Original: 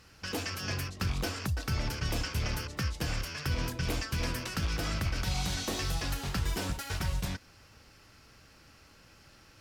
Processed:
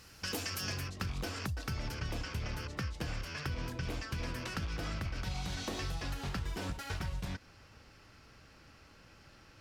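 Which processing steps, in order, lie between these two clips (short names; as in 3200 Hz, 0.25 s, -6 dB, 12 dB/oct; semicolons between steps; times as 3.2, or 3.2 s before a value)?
high shelf 6000 Hz +8 dB, from 0.79 s -3 dB, from 1.94 s -9.5 dB; compressor, threshold -34 dBFS, peak gain reduction 7.5 dB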